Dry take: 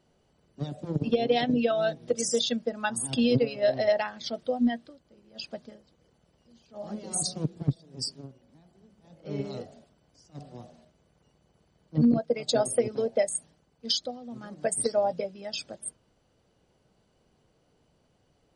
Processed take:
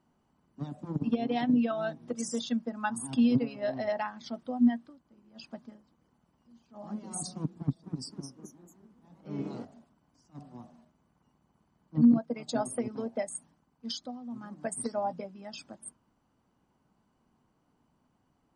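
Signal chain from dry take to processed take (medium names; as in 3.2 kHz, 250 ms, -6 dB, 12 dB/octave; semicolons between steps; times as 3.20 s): graphic EQ 250/500/1000/4000 Hz +10/-8/+11/-5 dB; 7.57–9.65 s: ever faster or slower copies 264 ms, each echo +2 st, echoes 3, each echo -6 dB; trim -7.5 dB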